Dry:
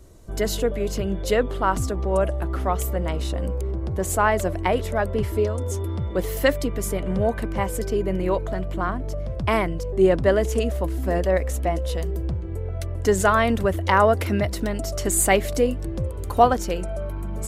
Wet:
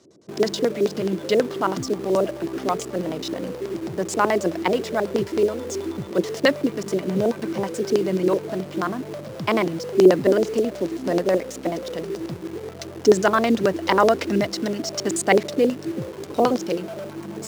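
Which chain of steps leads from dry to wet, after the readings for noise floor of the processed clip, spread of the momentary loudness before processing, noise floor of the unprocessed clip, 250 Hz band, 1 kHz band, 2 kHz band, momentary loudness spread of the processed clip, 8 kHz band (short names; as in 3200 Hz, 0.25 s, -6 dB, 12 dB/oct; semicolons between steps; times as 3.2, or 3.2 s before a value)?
-37 dBFS, 9 LU, -29 dBFS, +3.5 dB, -2.0 dB, -1.0 dB, 12 LU, -4.0 dB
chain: LFO low-pass square 9.3 Hz 370–5400 Hz; in parallel at -10 dB: bit-crush 5-bit; on the sum: HPF 150 Hz 24 dB/oct; gain -1.5 dB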